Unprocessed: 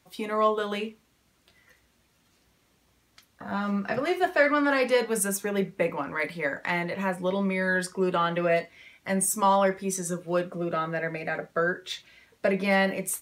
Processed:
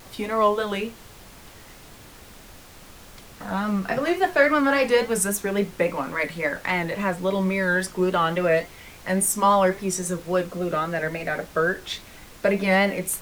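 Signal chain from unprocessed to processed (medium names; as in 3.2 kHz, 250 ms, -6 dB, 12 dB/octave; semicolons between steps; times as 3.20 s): added noise pink -49 dBFS; vibrato 3.6 Hz 73 cents; trim +3.5 dB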